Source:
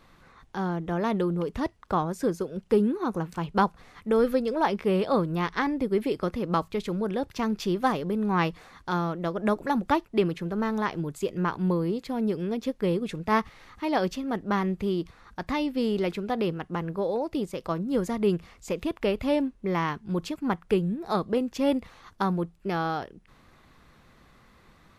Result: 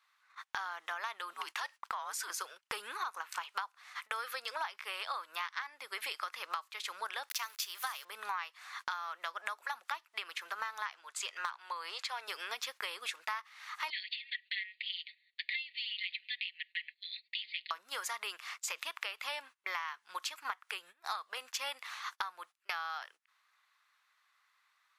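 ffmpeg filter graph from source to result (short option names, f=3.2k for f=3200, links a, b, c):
-filter_complex "[0:a]asettb=1/sr,asplit=3[a][b][c];[a]atrim=end=1.334[d];[b]atrim=start=1.33:end=2.3,asetpts=PTS-STARTPTS,afade=t=in:d=0.004:c=qsin,afade=t=out:st=0.966:d=0.004:c=qsin,equalizer=f=140:t=o:w=0.5:g=-13,acompressor=threshold=-26dB:ratio=16:attack=3.2:release=140:knee=1:detection=peak,afreqshift=-99[e];[c]atrim=start=2.296[f];[d][e]acrossfade=d=0.004:c1=hsin:c2=qsin[g];[g][f]acrossfade=d=0.004:c1=qsin:c2=hsin,asettb=1/sr,asplit=3[h][i][j];[h]atrim=end=7.294[k];[i]atrim=start=7.29:end=8.05,asetpts=PTS-STARTPTS,afade=t=in:d=0.004:c=qsin,afade=t=out:st=0.756:d=0.004:c=qsin,highpass=f=540:p=1,aemphasis=mode=production:type=50fm,aeval=exprs='val(0)*gte(abs(val(0)),0.00447)':c=same[l];[j]atrim=start=8.046[m];[k][l]acrossfade=d=0.004:c1=hsin:c2=qsin[n];[n][m]acrossfade=d=0.004:c1=qsin:c2=hsin,asettb=1/sr,asplit=3[o][p][q];[o]atrim=end=10.944[r];[p]atrim=start=10.94:end=12.28,asetpts=PTS-STARTPTS,afade=t=in:d=0.004:c=qsin,afade=t=out:st=1.336:d=0.004:c=qsin,highpass=440,lowpass=7.7k,volume=19.5dB,asoftclip=hard,volume=-19.5dB[s];[q]atrim=start=12.276[t];[r][s]acrossfade=d=0.004:c1=hsin:c2=qsin[u];[u][t]acrossfade=d=0.004:c1=qsin:c2=hsin,asettb=1/sr,asplit=3[v][w][x];[v]atrim=end=13.904[y];[w]atrim=start=13.9:end=17.71,asetpts=PTS-STARTPTS,afade=t=in:d=0.004:c=qsin,afade=t=out:st=3.806:d=0.004:c=qsin,asuperpass=centerf=2900:order=20:qfactor=1.1,aecho=1:1:5.2:0.73,atrim=end_sample=168021[z];[x]atrim=start=17.706[aa];[y][z]acrossfade=d=0.004:c1=hsin:c2=qsin[ab];[ab][aa]acrossfade=d=0.004:c1=qsin:c2=hsin,highpass=f=1.1k:w=0.5412,highpass=f=1.1k:w=1.3066,agate=range=-23dB:threshold=-55dB:ratio=16:detection=peak,acompressor=threshold=-47dB:ratio=16,volume=12dB"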